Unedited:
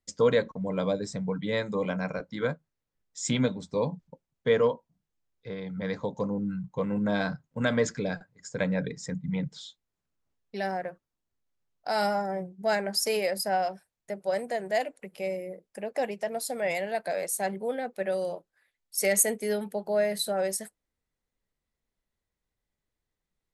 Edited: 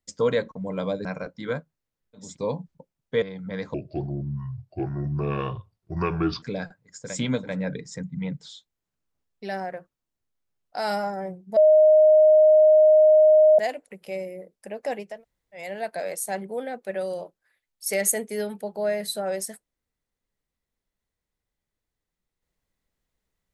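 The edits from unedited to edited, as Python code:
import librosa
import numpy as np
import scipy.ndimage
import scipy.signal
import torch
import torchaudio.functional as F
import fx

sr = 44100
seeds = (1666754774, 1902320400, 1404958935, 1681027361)

y = fx.edit(x, sr, fx.cut(start_s=1.05, length_s=0.94),
    fx.move(start_s=3.19, length_s=0.39, to_s=8.59, crossfade_s=0.24),
    fx.cut(start_s=4.55, length_s=0.98),
    fx.speed_span(start_s=6.05, length_s=1.88, speed=0.7),
    fx.bleep(start_s=12.68, length_s=2.02, hz=619.0, db=-11.5),
    fx.room_tone_fill(start_s=16.24, length_s=0.51, crossfade_s=0.24), tone=tone)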